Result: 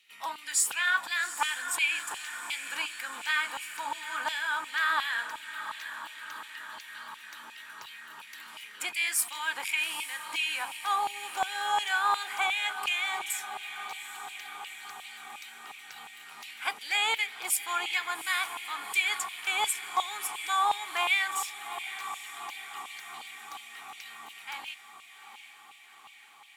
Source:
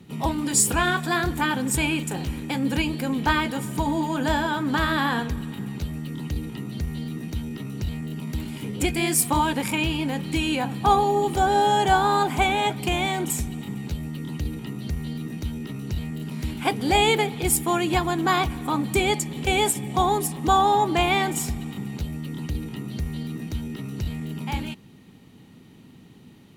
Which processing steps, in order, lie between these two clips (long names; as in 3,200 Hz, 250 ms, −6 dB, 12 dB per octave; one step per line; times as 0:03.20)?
feedback delay with all-pass diffusion 810 ms, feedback 67%, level −11.5 dB
auto-filter high-pass saw down 2.8 Hz 980–2,700 Hz
level −6.5 dB